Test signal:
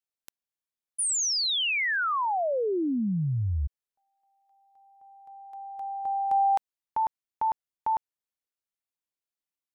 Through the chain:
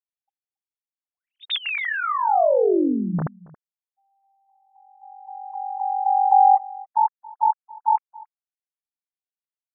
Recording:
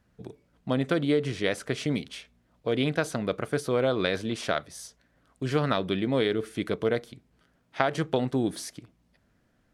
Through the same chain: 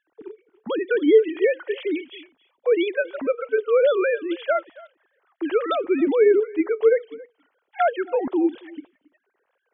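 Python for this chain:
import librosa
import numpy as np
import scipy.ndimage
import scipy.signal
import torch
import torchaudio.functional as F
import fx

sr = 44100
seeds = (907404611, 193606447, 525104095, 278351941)

p1 = fx.sine_speech(x, sr)
p2 = p1 + fx.echo_single(p1, sr, ms=276, db=-22.0, dry=0)
y = p2 * librosa.db_to_amplitude(6.5)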